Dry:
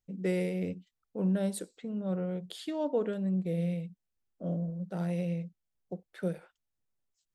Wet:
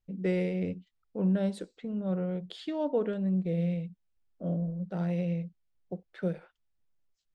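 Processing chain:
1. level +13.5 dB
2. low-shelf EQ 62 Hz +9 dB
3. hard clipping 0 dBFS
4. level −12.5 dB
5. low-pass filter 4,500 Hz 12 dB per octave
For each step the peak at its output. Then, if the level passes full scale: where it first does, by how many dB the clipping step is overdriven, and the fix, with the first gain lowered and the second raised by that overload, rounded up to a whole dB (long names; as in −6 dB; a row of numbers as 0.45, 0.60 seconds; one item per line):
−5.5, −5.5, −5.5, −18.0, −18.0 dBFS
no step passes full scale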